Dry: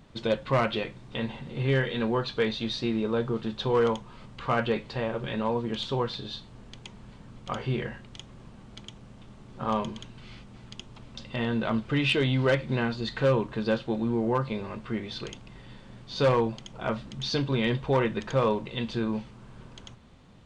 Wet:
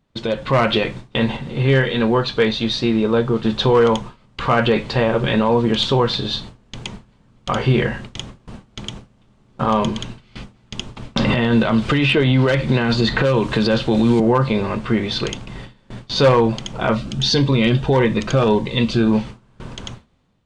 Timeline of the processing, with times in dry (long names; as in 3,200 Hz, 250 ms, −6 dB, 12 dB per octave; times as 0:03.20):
0:01.37–0:03.45: clip gain −4 dB
0:11.16–0:14.20: multiband upward and downward compressor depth 100%
0:16.95–0:19.11: phaser whose notches keep moving one way rising 1.6 Hz
whole clip: noise gate with hold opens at −35 dBFS; brickwall limiter −22 dBFS; automatic gain control gain up to 6.5 dB; level +8 dB